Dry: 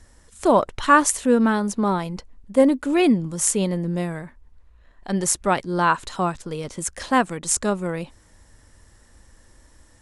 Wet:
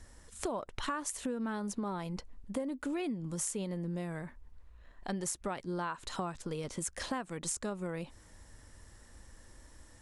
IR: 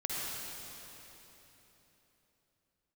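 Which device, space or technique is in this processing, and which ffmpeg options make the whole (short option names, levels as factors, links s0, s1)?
serial compression, leveller first: -af "acompressor=threshold=0.0891:ratio=2.5,acompressor=threshold=0.0251:ratio=4,volume=0.708"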